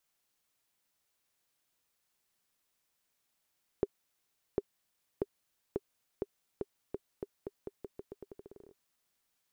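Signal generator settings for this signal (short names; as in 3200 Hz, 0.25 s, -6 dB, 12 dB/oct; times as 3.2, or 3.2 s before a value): bouncing ball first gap 0.75 s, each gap 0.85, 401 Hz, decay 38 ms -16.5 dBFS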